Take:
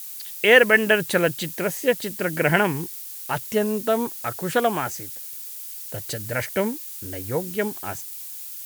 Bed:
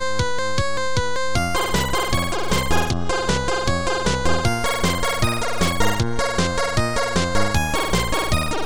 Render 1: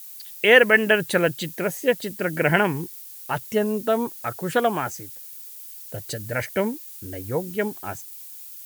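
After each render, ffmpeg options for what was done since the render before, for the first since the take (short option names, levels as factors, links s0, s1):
-af "afftdn=nr=6:nf=-37"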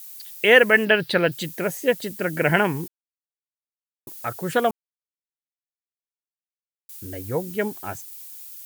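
-filter_complex "[0:a]asettb=1/sr,asplit=3[s0][s1][s2];[s0]atrim=end=0.854[s3];[s1]atrim=start=0.85:end=1.32,asetpts=PTS-STARTPTS,afade=t=in:d=0.004:c=qsin,afade=t=out:st=0.466:d=0.004:c=qsin,highshelf=f=5600:t=q:w=3:g=-7.5[s4];[s2]atrim=start=1.316[s5];[s3][s4]acrossfade=d=0.004:c1=hsin:c2=qsin[s6];[s6][s5]acrossfade=d=0.004:c1=qsin:c2=hsin,asplit=5[s7][s8][s9][s10][s11];[s7]atrim=end=2.88,asetpts=PTS-STARTPTS,afade=t=out:st=2.876:d=0.004:c=hsin[s12];[s8]atrim=start=2.88:end=4.07,asetpts=PTS-STARTPTS,volume=0[s13];[s9]atrim=start=4.07:end=4.71,asetpts=PTS-STARTPTS,afade=t=in:d=0.004:c=hsin,afade=t=out:st=0.636:d=0.004:c=hsin[s14];[s10]atrim=start=4.71:end=6.89,asetpts=PTS-STARTPTS,volume=0[s15];[s11]atrim=start=6.89,asetpts=PTS-STARTPTS,afade=t=in:d=0.004:c=hsin[s16];[s12][s13][s14][s15][s16]concat=n=5:v=0:a=1"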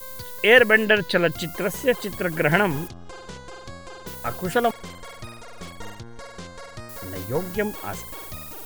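-filter_complex "[1:a]volume=0.119[s0];[0:a][s0]amix=inputs=2:normalize=0"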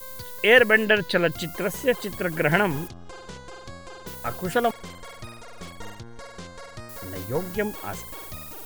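-af "volume=0.841"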